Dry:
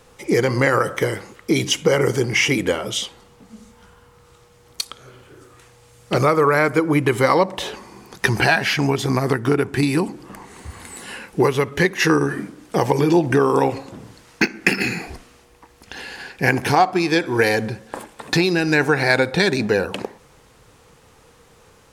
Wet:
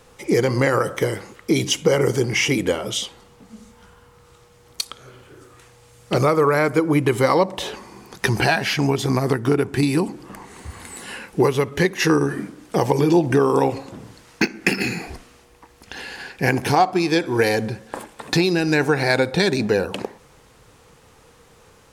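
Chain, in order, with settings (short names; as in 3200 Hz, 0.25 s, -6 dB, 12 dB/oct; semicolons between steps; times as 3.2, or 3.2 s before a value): dynamic EQ 1700 Hz, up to -4 dB, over -31 dBFS, Q 0.98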